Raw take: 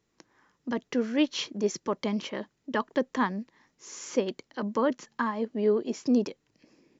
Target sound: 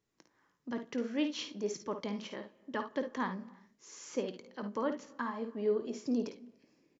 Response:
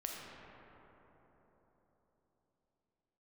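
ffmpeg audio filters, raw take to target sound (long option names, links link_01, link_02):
-filter_complex "[0:a]aecho=1:1:21|54|71:0.15|0.355|0.188,asplit=2[link_01][link_02];[1:a]atrim=start_sample=2205,afade=type=out:start_time=0.4:duration=0.01,atrim=end_sample=18081,adelay=7[link_03];[link_02][link_03]afir=irnorm=-1:irlink=0,volume=-17.5dB[link_04];[link_01][link_04]amix=inputs=2:normalize=0,volume=-8.5dB"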